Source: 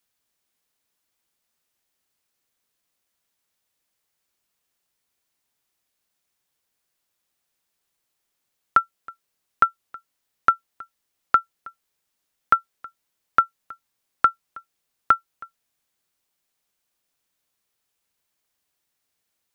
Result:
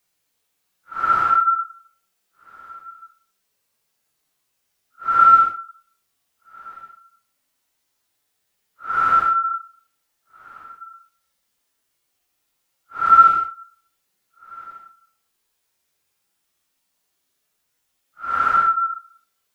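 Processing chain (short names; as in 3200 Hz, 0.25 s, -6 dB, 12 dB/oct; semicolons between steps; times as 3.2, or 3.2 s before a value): stepped spectrum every 50 ms; Paulstretch 4.6×, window 0.10 s, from 8.49; gain +6 dB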